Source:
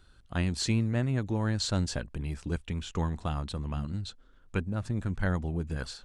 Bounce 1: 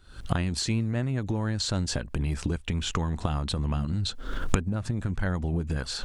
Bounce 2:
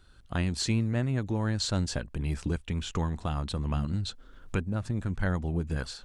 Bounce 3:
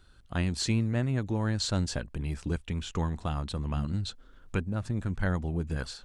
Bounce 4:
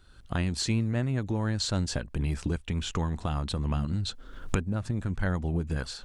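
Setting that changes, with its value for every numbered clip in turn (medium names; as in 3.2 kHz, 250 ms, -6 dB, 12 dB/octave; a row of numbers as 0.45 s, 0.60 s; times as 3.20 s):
recorder AGC, rising by: 91 dB/s, 14 dB/s, 5.3 dB/s, 33 dB/s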